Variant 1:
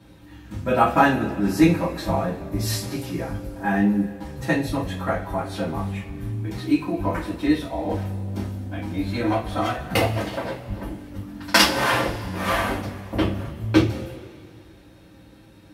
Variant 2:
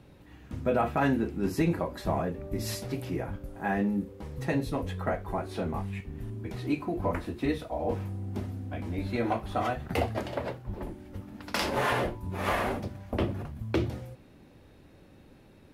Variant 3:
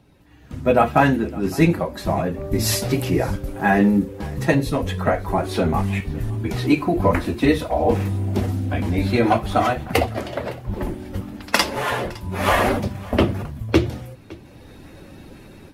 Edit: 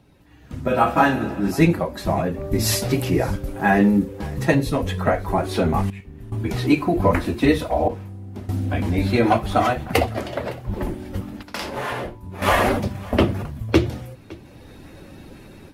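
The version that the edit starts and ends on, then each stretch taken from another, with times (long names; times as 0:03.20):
3
0:00.68–0:01.51: punch in from 1
0:05.90–0:06.32: punch in from 2
0:07.88–0:08.49: punch in from 2
0:11.43–0:12.42: punch in from 2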